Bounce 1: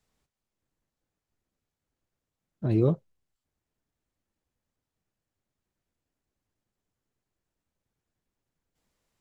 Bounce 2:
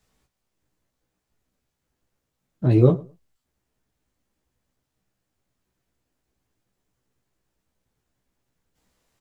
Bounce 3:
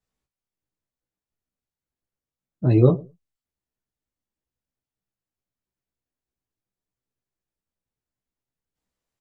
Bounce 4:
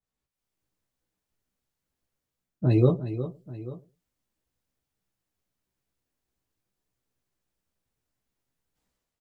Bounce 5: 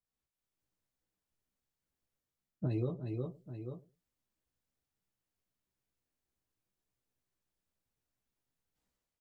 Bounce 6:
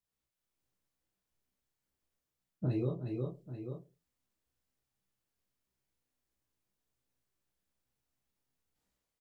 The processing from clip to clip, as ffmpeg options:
ffmpeg -i in.wav -filter_complex "[0:a]asplit=2[link_01][link_02];[link_02]adelay=16,volume=-4dB[link_03];[link_01][link_03]amix=inputs=2:normalize=0,asplit=2[link_04][link_05];[link_05]adelay=107,lowpass=frequency=1600:poles=1,volume=-21dB,asplit=2[link_06][link_07];[link_07]adelay=107,lowpass=frequency=1600:poles=1,volume=0.19[link_08];[link_04][link_06][link_08]amix=inputs=3:normalize=0,volume=6dB" out.wav
ffmpeg -i in.wav -af "afftdn=noise_reduction=15:noise_floor=-40,adynamicequalizer=threshold=0.0178:dfrequency=1900:dqfactor=0.7:tfrequency=1900:tqfactor=0.7:attack=5:release=100:ratio=0.375:range=2.5:mode=boostabove:tftype=highshelf" out.wav
ffmpeg -i in.wav -af "dynaudnorm=framelen=140:gausssize=5:maxgain=12dB,aecho=1:1:359|837:0.266|0.126,adynamicequalizer=threshold=0.00891:dfrequency=2800:dqfactor=0.7:tfrequency=2800:tqfactor=0.7:attack=5:release=100:ratio=0.375:range=3.5:mode=boostabove:tftype=highshelf,volume=-6dB" out.wav
ffmpeg -i in.wav -af "acompressor=threshold=-25dB:ratio=6,volume=-6dB" out.wav
ffmpeg -i in.wav -filter_complex "[0:a]asplit=2[link_01][link_02];[link_02]adelay=31,volume=-4dB[link_03];[link_01][link_03]amix=inputs=2:normalize=0" out.wav

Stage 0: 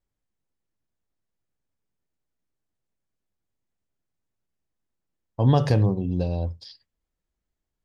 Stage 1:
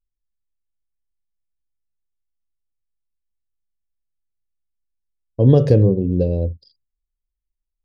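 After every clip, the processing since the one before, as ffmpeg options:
ffmpeg -i in.wav -af "anlmdn=0.398,lowshelf=frequency=640:width_type=q:width=3:gain=9,volume=-3.5dB" out.wav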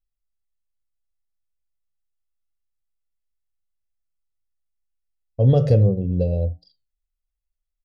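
ffmpeg -i in.wav -af "aecho=1:1:1.5:0.61,flanger=delay=8.2:depth=2.5:regen=-82:speed=1.2:shape=triangular" out.wav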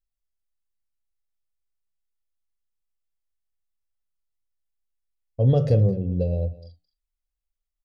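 ffmpeg -i in.wav -af "aecho=1:1:216:0.112,volume=-3dB" out.wav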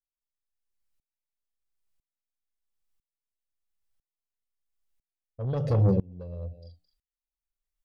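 ffmpeg -i in.wav -af "asoftclip=type=tanh:threshold=-18dB,aeval=exprs='val(0)*pow(10,-27*if(lt(mod(-1*n/s,1),2*abs(-1)/1000),1-mod(-1*n/s,1)/(2*abs(-1)/1000),(mod(-1*n/s,1)-2*abs(-1)/1000)/(1-2*abs(-1)/1000))/20)':channel_layout=same,volume=6dB" out.wav

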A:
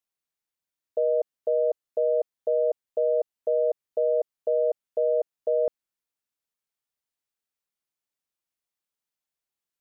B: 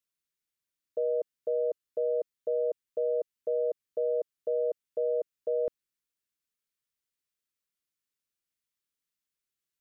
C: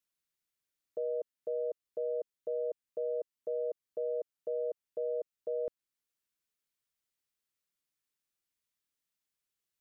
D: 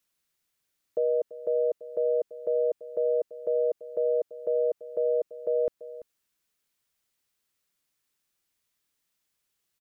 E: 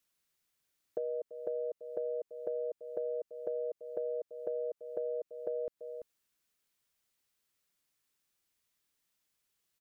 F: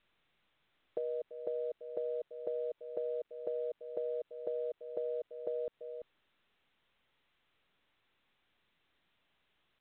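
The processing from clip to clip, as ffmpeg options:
ffmpeg -i in.wav -af "equalizer=frequency=760:width_type=o:width=0.69:gain=-14.5" out.wav
ffmpeg -i in.wav -af "alimiter=level_in=4dB:limit=-24dB:level=0:latency=1:release=477,volume=-4dB" out.wav
ffmpeg -i in.wav -filter_complex "[0:a]asplit=2[link_01][link_02];[link_02]adelay=338.2,volume=-16dB,highshelf=frequency=4000:gain=-7.61[link_03];[link_01][link_03]amix=inputs=2:normalize=0,volume=9dB" out.wav
ffmpeg -i in.wav -af "acompressor=threshold=-32dB:ratio=6,volume=-2dB" out.wav
ffmpeg -i in.wav -af "volume=-1dB" -ar 8000 -c:a pcm_mulaw out.wav

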